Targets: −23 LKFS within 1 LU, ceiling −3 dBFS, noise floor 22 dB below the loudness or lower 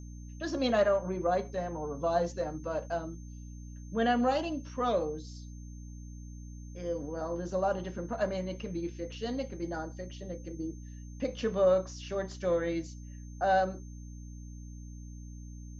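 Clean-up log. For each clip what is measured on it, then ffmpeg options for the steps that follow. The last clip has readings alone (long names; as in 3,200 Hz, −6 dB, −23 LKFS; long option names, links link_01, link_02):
mains hum 60 Hz; hum harmonics up to 300 Hz; level of the hum −42 dBFS; interfering tone 6,300 Hz; level of the tone −59 dBFS; integrated loudness −32.5 LKFS; sample peak −15.0 dBFS; target loudness −23.0 LKFS
→ -af "bandreject=frequency=60:width_type=h:width=4,bandreject=frequency=120:width_type=h:width=4,bandreject=frequency=180:width_type=h:width=4,bandreject=frequency=240:width_type=h:width=4,bandreject=frequency=300:width_type=h:width=4"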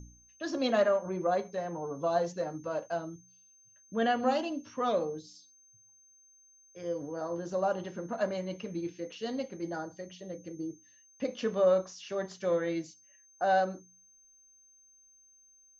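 mains hum none found; interfering tone 6,300 Hz; level of the tone −59 dBFS
→ -af "bandreject=frequency=6300:width=30"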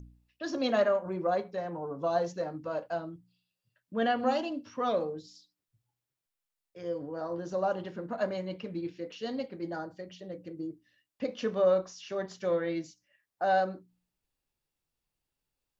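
interfering tone none found; integrated loudness −32.5 LKFS; sample peak −14.5 dBFS; target loudness −23.0 LKFS
→ -af "volume=9.5dB"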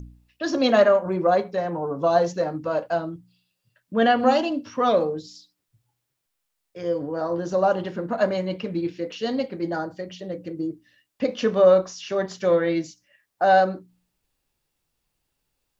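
integrated loudness −23.0 LKFS; sample peak −5.0 dBFS; background noise floor −79 dBFS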